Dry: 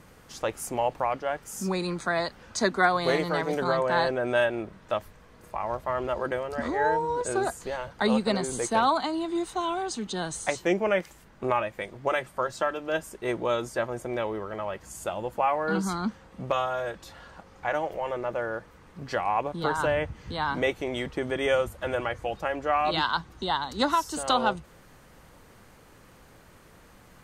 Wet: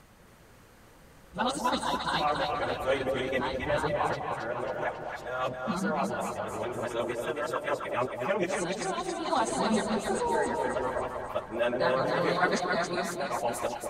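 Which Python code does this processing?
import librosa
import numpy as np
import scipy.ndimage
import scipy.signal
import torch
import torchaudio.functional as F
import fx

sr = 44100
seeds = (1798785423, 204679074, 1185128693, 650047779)

y = x[::-1].copy()
y = fx.stretch_vocoder_free(y, sr, factor=0.51)
y = fx.echo_split(y, sr, split_hz=780.0, low_ms=199, high_ms=273, feedback_pct=52, wet_db=-4)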